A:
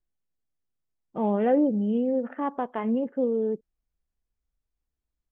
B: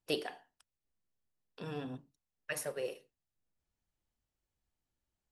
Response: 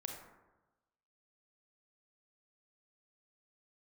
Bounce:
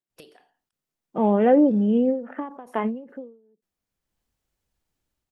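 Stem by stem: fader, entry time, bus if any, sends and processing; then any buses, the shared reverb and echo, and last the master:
−3.0 dB, 0.00 s, no send, high-pass filter 140 Hz 24 dB per octave
−1.0 dB, 0.10 s, no send, downward compressor 6 to 1, threshold −44 dBFS, peak gain reduction 15 dB; automatic ducking −17 dB, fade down 0.90 s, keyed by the first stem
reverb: not used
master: automatic gain control gain up to 8.5 dB; every ending faded ahead of time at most 120 dB per second

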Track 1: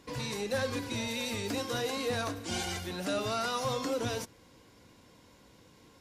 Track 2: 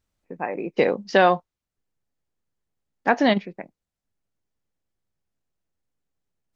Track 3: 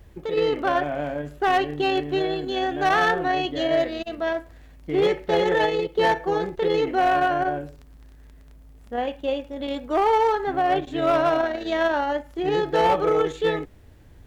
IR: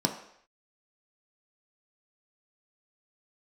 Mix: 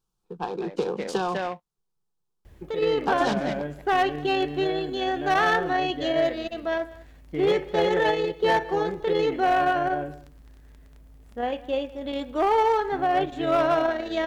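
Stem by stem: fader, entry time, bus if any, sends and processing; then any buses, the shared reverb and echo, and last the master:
muted
+1.5 dB, 0.00 s, bus A, no send, echo send −15 dB, short delay modulated by noise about 1,300 Hz, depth 0.034 ms
−1.5 dB, 2.45 s, no bus, no send, echo send −20.5 dB, no processing
bus A: 0.0 dB, phaser with its sweep stopped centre 400 Hz, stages 8; downward compressor 10 to 1, threshold −22 dBFS, peak gain reduction 9.5 dB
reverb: not used
echo: single-tap delay 198 ms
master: no processing

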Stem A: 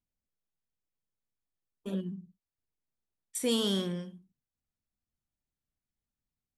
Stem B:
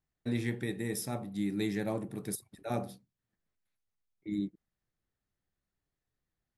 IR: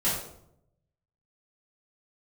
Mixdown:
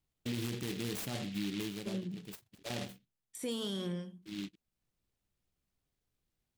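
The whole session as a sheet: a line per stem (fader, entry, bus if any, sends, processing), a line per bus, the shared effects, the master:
−2.5 dB, 0.00 s, no send, de-essing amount 75%
+2.0 dB, 0.00 s, no send, short delay modulated by noise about 2,900 Hz, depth 0.19 ms; automatic ducking −13 dB, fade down 0.50 s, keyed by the first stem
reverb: not used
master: brickwall limiter −28.5 dBFS, peak gain reduction 10 dB

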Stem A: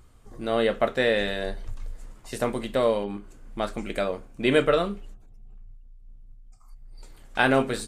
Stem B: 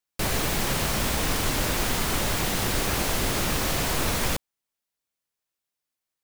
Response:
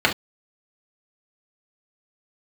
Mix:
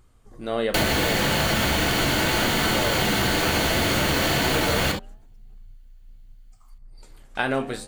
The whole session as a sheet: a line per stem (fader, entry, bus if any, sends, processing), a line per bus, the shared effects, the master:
+1.5 dB, 0.00 s, no send, automatic gain control gain up to 3.5 dB; flanger 0.36 Hz, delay 7.4 ms, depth 9.6 ms, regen −89%
−1.5 dB, 0.55 s, send −4.5 dB, high-shelf EQ 4,300 Hz +6 dB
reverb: on, pre-delay 3 ms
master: downward compressor 6 to 1, threshold −19 dBFS, peak gain reduction 9.5 dB

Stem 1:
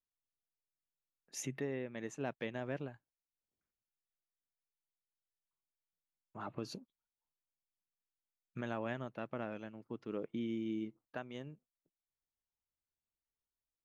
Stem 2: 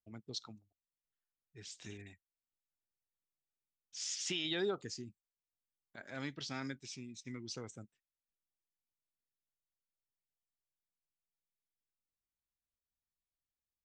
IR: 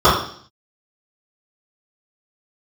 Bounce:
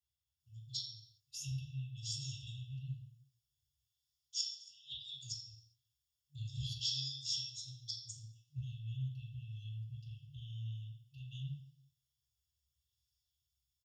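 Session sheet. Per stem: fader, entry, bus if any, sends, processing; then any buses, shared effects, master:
−2.0 dB, 0.00 s, send −14 dB, downward compressor, threshold −42 dBFS, peak gain reduction 8.5 dB; brickwall limiter −38 dBFS, peak gain reduction 7.5 dB
−14.0 dB, 0.40 s, send −6 dB, bass and treble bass −10 dB, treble +13 dB; gate with flip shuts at −23 dBFS, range −29 dB; auto-filter bell 0.67 Hz 370–5,100 Hz +8 dB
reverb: on, RT60 0.55 s, pre-delay 3 ms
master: brick-wall band-stop 150–2,600 Hz

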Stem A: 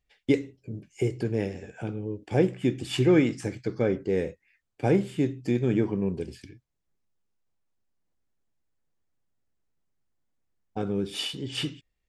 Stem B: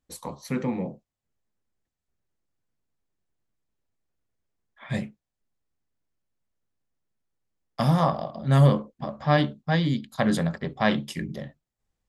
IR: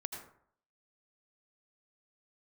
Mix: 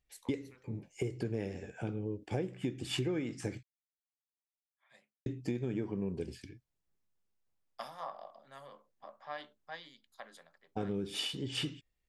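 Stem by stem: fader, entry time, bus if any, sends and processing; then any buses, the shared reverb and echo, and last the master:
−3.5 dB, 0.00 s, muted 0:03.63–0:05.26, no send, no processing
−12.0 dB, 0.00 s, no send, downward compressor 4 to 1, threshold −26 dBFS, peak gain reduction 11.5 dB; high-pass filter 700 Hz 12 dB per octave; multiband upward and downward expander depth 70%; automatic ducking −13 dB, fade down 1.00 s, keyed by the first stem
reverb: not used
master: downward compressor 10 to 1, threshold −31 dBFS, peak gain reduction 12.5 dB

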